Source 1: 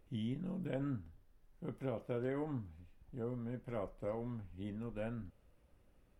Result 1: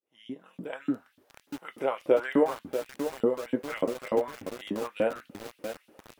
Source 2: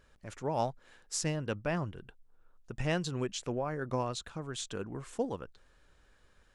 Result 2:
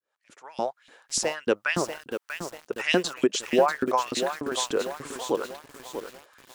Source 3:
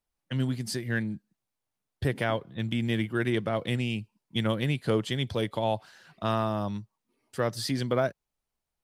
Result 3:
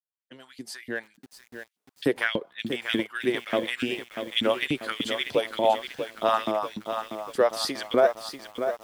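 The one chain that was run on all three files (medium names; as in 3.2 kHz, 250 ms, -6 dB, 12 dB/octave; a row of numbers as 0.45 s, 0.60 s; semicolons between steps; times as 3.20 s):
fade-in on the opening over 1.59 s; LFO high-pass saw up 3.4 Hz 240–3700 Hz; bit-crushed delay 640 ms, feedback 55%, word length 8-bit, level -8 dB; peak normalisation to -9 dBFS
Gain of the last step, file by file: +14.0 dB, +9.5 dB, +2.0 dB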